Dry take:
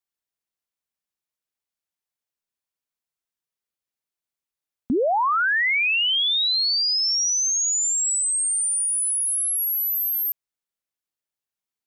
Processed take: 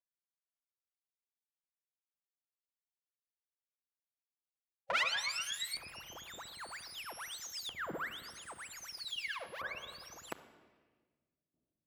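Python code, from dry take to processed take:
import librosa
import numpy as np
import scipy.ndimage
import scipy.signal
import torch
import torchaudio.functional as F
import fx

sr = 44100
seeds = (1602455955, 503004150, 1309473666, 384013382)

y = fx.lower_of_two(x, sr, delay_ms=3.6)
y = fx.spec_gate(y, sr, threshold_db=-25, keep='weak')
y = fx.high_shelf(y, sr, hz=4900.0, db=fx.steps((0.0, 8.0), (5.03, -5.5)))
y = fx.room_shoebox(y, sr, seeds[0], volume_m3=2500.0, walls='mixed', distance_m=0.75)
y = fx.filter_lfo_bandpass(y, sr, shape='saw_up', hz=0.52, low_hz=870.0, high_hz=4000.0, q=0.83)
y = fx.tilt_shelf(y, sr, db=4.5, hz=1200.0)
y = y * 10.0 ** (17.0 / 20.0)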